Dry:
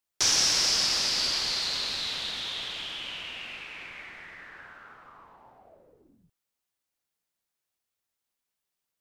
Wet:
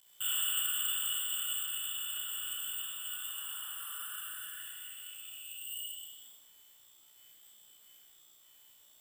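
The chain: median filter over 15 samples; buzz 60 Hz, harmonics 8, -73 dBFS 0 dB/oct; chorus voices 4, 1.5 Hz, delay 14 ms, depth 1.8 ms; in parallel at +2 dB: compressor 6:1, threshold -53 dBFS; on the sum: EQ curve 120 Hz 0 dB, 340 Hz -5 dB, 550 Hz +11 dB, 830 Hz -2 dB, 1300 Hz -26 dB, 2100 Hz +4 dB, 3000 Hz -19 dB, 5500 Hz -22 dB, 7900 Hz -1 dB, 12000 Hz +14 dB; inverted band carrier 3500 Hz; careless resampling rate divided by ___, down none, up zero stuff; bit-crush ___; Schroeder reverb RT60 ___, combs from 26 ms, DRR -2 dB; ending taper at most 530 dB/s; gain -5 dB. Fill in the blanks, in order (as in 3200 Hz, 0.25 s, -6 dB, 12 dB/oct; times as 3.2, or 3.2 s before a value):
4×, 9-bit, 0.88 s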